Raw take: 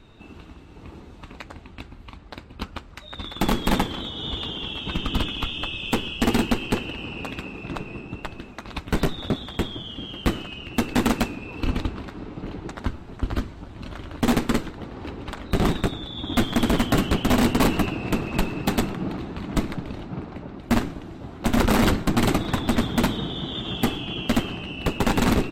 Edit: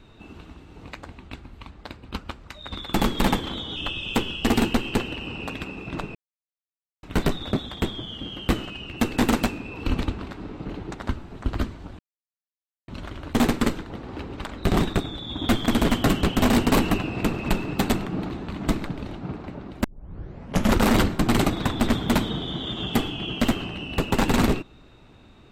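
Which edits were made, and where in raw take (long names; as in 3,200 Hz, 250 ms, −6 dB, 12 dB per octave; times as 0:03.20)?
0:00.87–0:01.34: remove
0:04.23–0:05.53: remove
0:07.92–0:08.80: silence
0:13.76: splice in silence 0.89 s
0:20.72: tape start 0.91 s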